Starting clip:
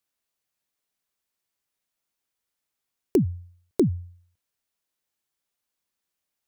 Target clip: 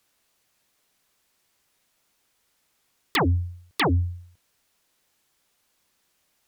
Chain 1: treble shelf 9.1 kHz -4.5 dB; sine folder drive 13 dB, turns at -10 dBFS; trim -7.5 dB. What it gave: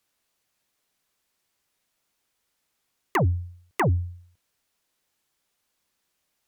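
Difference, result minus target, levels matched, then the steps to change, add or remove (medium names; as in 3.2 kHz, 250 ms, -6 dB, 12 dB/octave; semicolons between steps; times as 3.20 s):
sine folder: distortion -6 dB
change: sine folder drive 19 dB, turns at -10 dBFS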